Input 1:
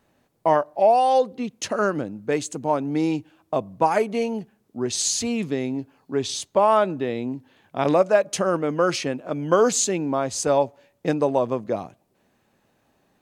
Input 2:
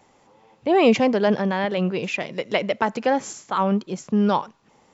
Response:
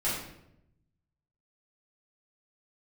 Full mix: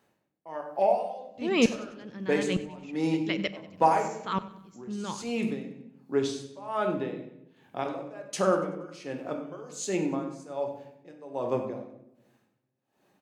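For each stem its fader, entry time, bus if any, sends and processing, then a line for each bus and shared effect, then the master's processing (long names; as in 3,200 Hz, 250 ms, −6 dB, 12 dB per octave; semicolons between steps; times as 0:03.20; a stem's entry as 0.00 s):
−5.0 dB, 0.00 s, send −8.5 dB, echo send −14 dB, Bessel high-pass filter 150 Hz; tremolo with a sine in dB 1.3 Hz, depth 26 dB
+0.5 dB, 0.75 s, send −23 dB, echo send −17 dB, parametric band 700 Hz −14.5 dB 1.3 octaves; tremolo with a ramp in dB swelling 1.1 Hz, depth 36 dB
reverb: on, RT60 0.80 s, pre-delay 6 ms
echo: repeating echo 95 ms, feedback 44%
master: no processing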